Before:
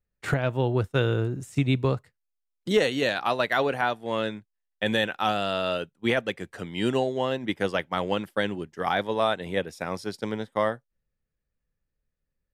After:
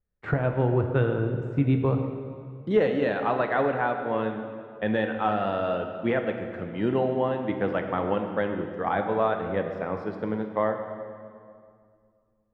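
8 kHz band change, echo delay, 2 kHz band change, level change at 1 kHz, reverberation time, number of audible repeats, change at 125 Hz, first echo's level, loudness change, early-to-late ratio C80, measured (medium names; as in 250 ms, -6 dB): under -25 dB, no echo, -3.5 dB, +0.5 dB, 2.2 s, no echo, +1.0 dB, no echo, 0.0 dB, 7.0 dB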